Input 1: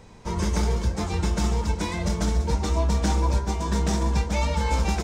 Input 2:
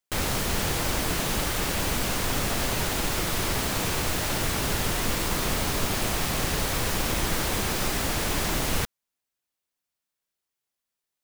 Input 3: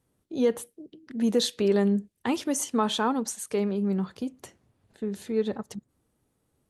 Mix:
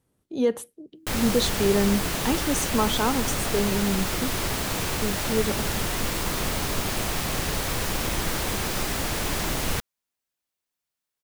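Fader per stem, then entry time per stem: muted, −0.5 dB, +1.0 dB; muted, 0.95 s, 0.00 s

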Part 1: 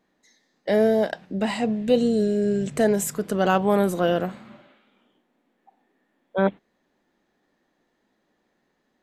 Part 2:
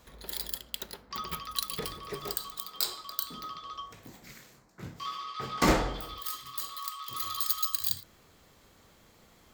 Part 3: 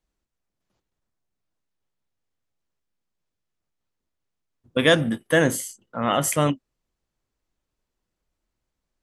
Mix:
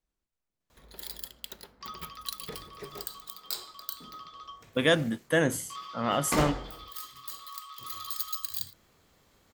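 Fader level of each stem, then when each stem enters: muted, −4.5 dB, −6.0 dB; muted, 0.70 s, 0.00 s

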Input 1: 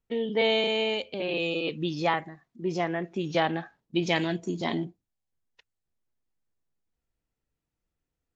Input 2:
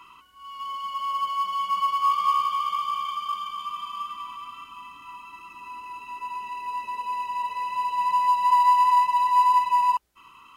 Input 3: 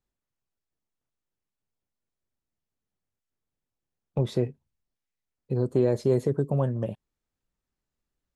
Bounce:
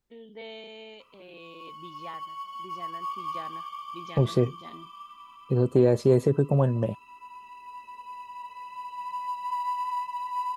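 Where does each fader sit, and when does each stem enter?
−18.0, −12.0, +3.0 decibels; 0.00, 1.00, 0.00 seconds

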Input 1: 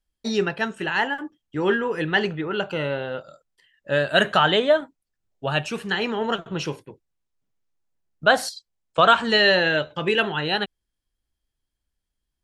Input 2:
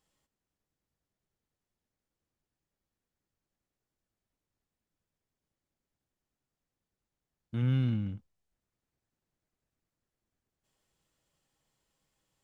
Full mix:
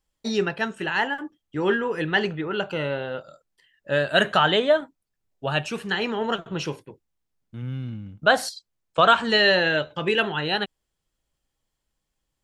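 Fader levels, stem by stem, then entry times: −1.0, −3.5 decibels; 0.00, 0.00 seconds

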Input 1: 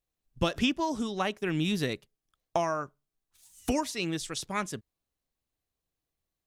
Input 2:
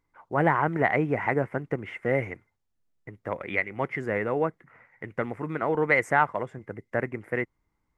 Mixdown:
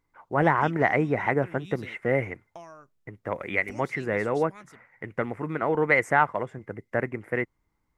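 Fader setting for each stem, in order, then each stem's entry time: −16.5, +1.0 decibels; 0.00, 0.00 seconds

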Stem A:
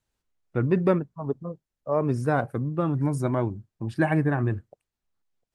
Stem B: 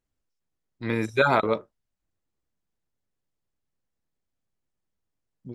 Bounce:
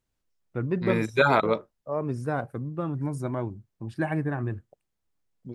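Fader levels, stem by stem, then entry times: −5.0, 0.0 decibels; 0.00, 0.00 seconds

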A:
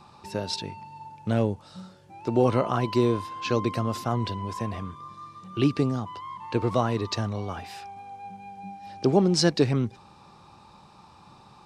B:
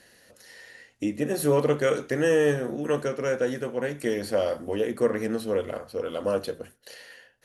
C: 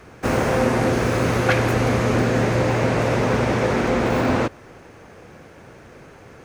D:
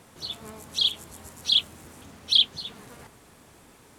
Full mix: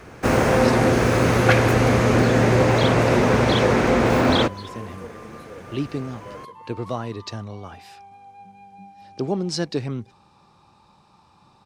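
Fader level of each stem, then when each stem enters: −4.0, −16.0, +2.0, −8.0 decibels; 0.15, 0.00, 0.00, 2.00 seconds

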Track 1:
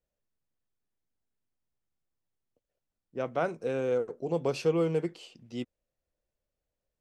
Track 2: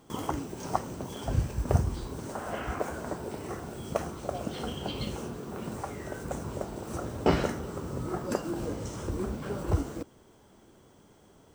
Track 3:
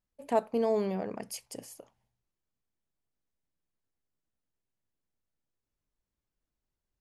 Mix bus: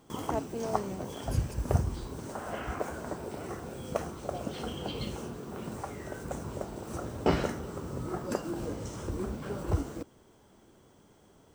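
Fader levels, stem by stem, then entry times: −18.0, −2.0, −7.5 decibels; 0.00, 0.00, 0.00 seconds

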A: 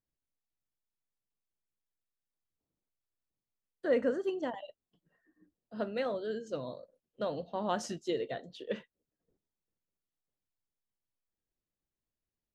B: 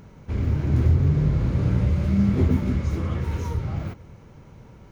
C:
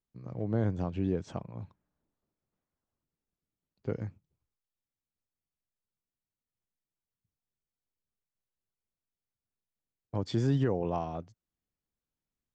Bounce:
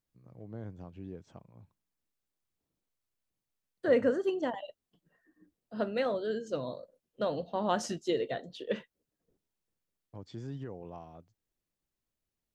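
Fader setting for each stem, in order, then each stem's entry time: +3.0 dB, muted, −13.5 dB; 0.00 s, muted, 0.00 s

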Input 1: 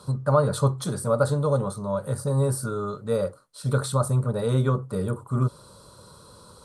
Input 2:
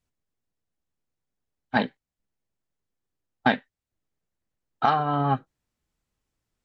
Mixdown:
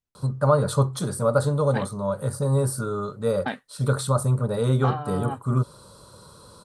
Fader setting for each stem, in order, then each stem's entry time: +1.0, −8.5 decibels; 0.15, 0.00 seconds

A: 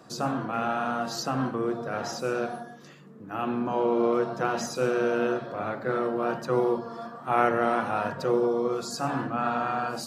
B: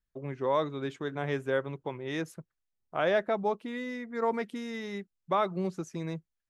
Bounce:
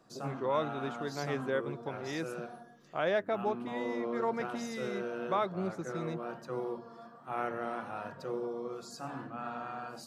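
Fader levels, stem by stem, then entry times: −12.5, −3.5 decibels; 0.00, 0.00 seconds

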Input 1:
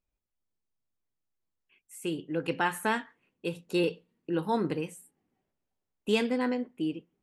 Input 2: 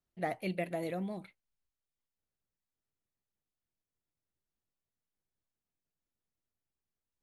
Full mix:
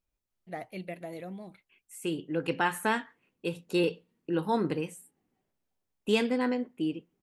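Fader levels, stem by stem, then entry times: +0.5, −4.0 decibels; 0.00, 0.30 seconds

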